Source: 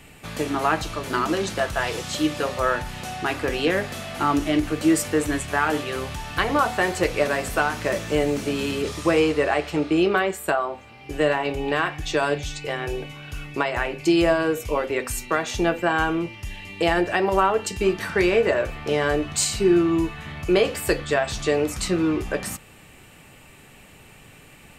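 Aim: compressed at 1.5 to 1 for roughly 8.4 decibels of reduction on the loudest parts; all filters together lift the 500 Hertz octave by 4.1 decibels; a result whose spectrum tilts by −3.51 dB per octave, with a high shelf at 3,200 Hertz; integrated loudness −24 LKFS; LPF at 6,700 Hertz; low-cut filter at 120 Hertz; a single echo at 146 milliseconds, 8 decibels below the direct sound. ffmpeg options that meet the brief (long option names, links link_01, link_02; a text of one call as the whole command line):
ffmpeg -i in.wav -af "highpass=120,lowpass=6700,equalizer=frequency=500:width_type=o:gain=5,highshelf=frequency=3200:gain=8.5,acompressor=threshold=-35dB:ratio=1.5,aecho=1:1:146:0.398,volume=3dB" out.wav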